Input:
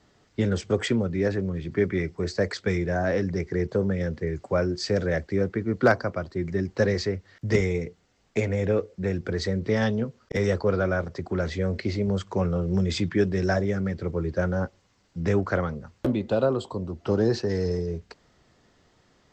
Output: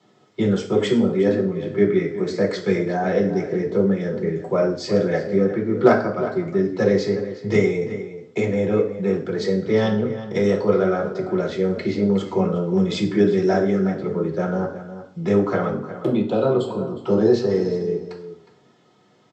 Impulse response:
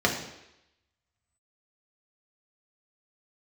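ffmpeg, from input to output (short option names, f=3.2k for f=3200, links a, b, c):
-filter_complex "[0:a]asplit=2[a][b];[b]adelay=361.5,volume=-12dB,highshelf=f=4k:g=-8.13[c];[a][c]amix=inputs=2:normalize=0[d];[1:a]atrim=start_sample=2205,asetrate=79380,aresample=44100[e];[d][e]afir=irnorm=-1:irlink=0,volume=-6.5dB"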